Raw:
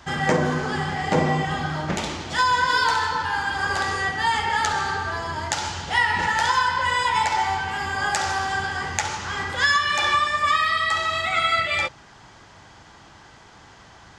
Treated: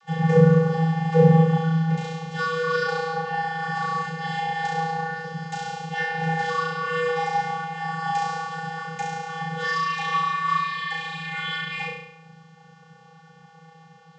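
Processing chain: flutter echo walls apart 5.9 m, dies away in 0.78 s; vocoder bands 32, square 162 Hz; gain -3 dB

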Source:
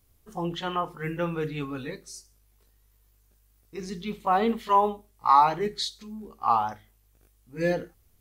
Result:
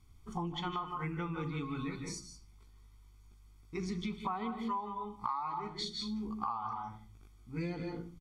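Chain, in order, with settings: air absorption 63 m; comb 0.9 ms, depth 82%; on a send at -8 dB: reverb RT60 0.30 s, pre-delay 0.147 s; on the sum: compressor 12:1, threshold -34 dBFS, peak gain reduction 24 dB

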